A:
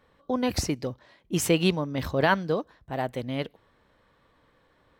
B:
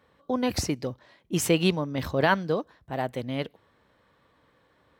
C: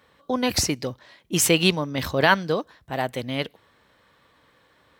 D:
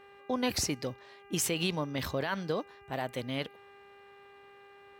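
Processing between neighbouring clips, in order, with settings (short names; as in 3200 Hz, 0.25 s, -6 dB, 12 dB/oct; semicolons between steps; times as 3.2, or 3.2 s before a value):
HPF 62 Hz
tilt shelf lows -4 dB, about 1400 Hz; gain +5.5 dB
limiter -14 dBFS, peak gain reduction 11.5 dB; buzz 400 Hz, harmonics 7, -49 dBFS -4 dB/oct; gain -6.5 dB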